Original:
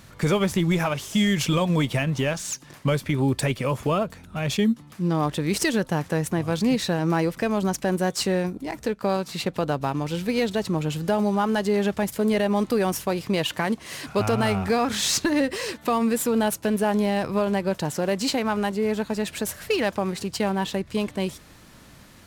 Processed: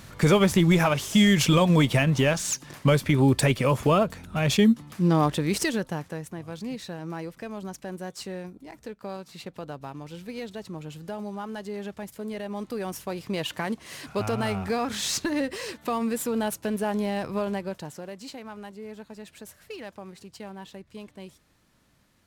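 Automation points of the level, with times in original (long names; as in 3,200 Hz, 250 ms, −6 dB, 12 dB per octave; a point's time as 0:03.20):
0:05.16 +2.5 dB
0:05.91 −6 dB
0:06.27 −12.5 dB
0:12.37 −12.5 dB
0:13.48 −5 dB
0:17.48 −5 dB
0:18.16 −16 dB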